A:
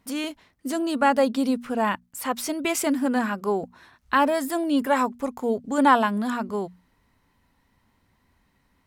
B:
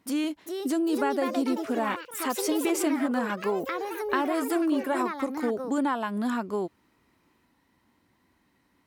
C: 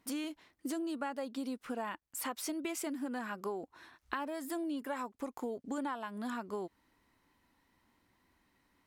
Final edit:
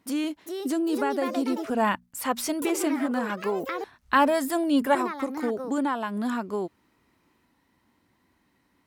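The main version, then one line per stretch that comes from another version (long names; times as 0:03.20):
B
0:01.70–0:02.62: punch in from A
0:03.84–0:04.95: punch in from A
not used: C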